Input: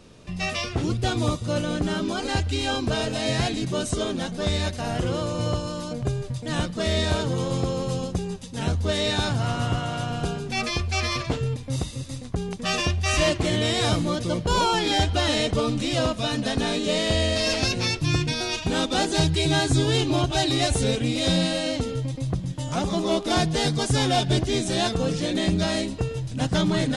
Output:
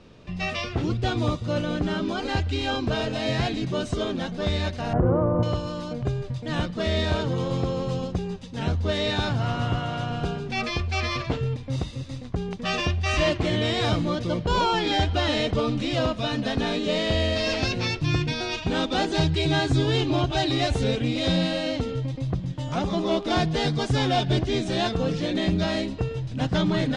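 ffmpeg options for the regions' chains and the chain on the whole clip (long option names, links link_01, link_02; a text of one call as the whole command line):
ffmpeg -i in.wav -filter_complex "[0:a]asettb=1/sr,asplit=3[link_01][link_02][link_03];[link_01]atrim=end=4.934[link_04];[link_02]atrim=start=4.93:end=5.43,asetpts=PTS-STARTPTS,afade=type=in:duration=0.004:curve=qsin,afade=type=out:start_time=0.496:duration=0.004:curve=qsin,lowpass=frequency=1200:width=0.5412,lowpass=frequency=1200:width=1.3066,acontrast=55[link_05];[link_03]atrim=start=5.426[link_06];[link_04][link_05]acrossfade=duration=0.004:curve1=hsin:curve2=qsin[link_07];[link_07][link_06]acrossfade=duration=0.004:curve1=qsin:curve2=hsin,lowpass=4200,acontrast=42,volume=-6dB" out.wav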